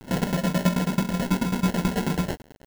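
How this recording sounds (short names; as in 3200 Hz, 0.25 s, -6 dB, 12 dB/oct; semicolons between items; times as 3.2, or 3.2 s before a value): a quantiser's noise floor 8-bit, dither none; tremolo saw down 9.2 Hz, depth 90%; aliases and images of a low sample rate 1200 Hz, jitter 0%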